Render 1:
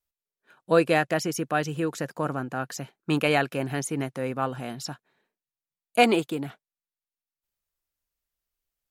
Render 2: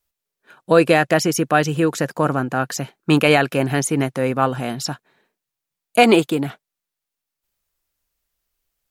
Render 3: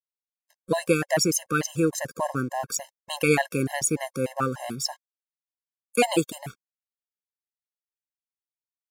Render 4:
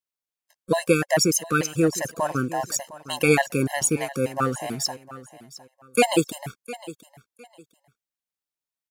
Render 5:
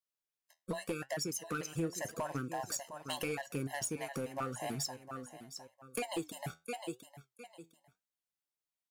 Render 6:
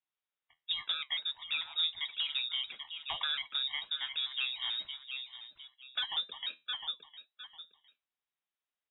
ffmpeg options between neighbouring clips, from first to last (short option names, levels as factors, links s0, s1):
-af "alimiter=level_in=3.35:limit=0.891:release=50:level=0:latency=1,volume=0.891"
-af "aeval=exprs='sgn(val(0))*max(abs(val(0))-0.00708,0)':c=same,highshelf=f=4700:t=q:w=1.5:g=7,afftfilt=real='re*gt(sin(2*PI*3.4*pts/sr)*(1-2*mod(floor(b*sr/1024/540),2)),0)':imag='im*gt(sin(2*PI*3.4*pts/sr)*(1-2*mod(floor(b*sr/1024/540),2)),0)':win_size=1024:overlap=0.75,volume=0.631"
-af "aecho=1:1:708|1416:0.141|0.0339,volume=1.33"
-af "acompressor=threshold=0.0355:ratio=10,asoftclip=type=hard:threshold=0.0531,flanger=delay=6.9:depth=5.4:regen=72:speed=0.84:shape=sinusoidal"
-af "lowpass=f=3300:t=q:w=0.5098,lowpass=f=3300:t=q:w=0.6013,lowpass=f=3300:t=q:w=0.9,lowpass=f=3300:t=q:w=2.563,afreqshift=-3900,volume=1.41"